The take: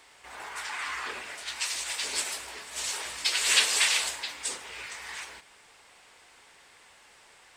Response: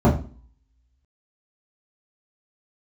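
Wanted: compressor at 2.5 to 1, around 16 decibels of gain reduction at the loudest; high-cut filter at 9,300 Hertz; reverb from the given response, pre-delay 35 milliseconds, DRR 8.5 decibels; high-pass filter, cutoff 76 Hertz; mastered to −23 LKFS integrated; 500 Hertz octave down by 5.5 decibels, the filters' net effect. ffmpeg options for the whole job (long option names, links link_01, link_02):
-filter_complex "[0:a]highpass=76,lowpass=9300,equalizer=frequency=500:width_type=o:gain=-7,acompressor=threshold=-43dB:ratio=2.5,asplit=2[link_01][link_02];[1:a]atrim=start_sample=2205,adelay=35[link_03];[link_02][link_03]afir=irnorm=-1:irlink=0,volume=-29dB[link_04];[link_01][link_04]amix=inputs=2:normalize=0,volume=17dB"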